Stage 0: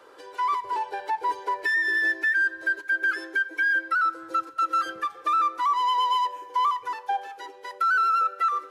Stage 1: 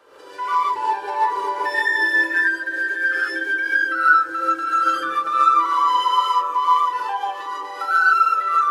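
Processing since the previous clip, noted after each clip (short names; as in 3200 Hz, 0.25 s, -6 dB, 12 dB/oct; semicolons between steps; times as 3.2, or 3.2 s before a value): delay with a stepping band-pass 0.193 s, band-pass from 240 Hz, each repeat 0.7 oct, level -3 dB; non-linear reverb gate 0.17 s rising, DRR -8 dB; gain -3 dB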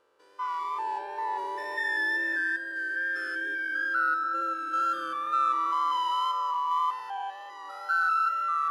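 stepped spectrum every 0.2 s; wow and flutter 24 cents; spectral noise reduction 9 dB; gain -8 dB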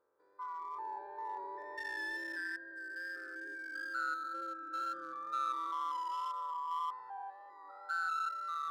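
Wiener smoothing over 15 samples; gain -9 dB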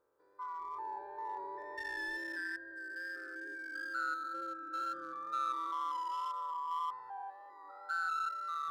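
low shelf 190 Hz +7.5 dB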